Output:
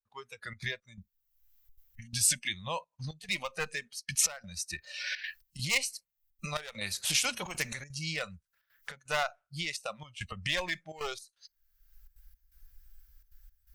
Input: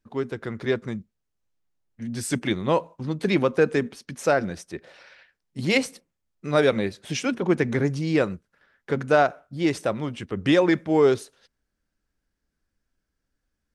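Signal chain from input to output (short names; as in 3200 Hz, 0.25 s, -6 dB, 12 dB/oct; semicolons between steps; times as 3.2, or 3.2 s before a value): one-sided fold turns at -14.5 dBFS; recorder AGC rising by 36 dB/s; spectral noise reduction 18 dB; 8.34–8.92 high shelf 6900 Hz +8 dB; step gate "xxxxxx.xx..xx" 169 bpm -12 dB; passive tone stack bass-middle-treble 10-0-10; 6.81–7.84 spectral compressor 2:1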